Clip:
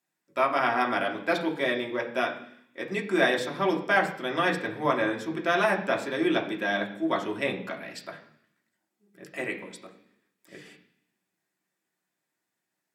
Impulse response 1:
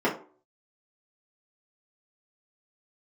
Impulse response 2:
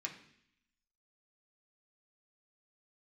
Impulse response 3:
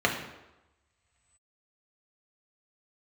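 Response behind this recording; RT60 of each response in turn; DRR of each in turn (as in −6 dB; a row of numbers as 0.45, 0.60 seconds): 2; 0.45, 0.65, 1.0 seconds; −8.0, −1.0, −0.5 decibels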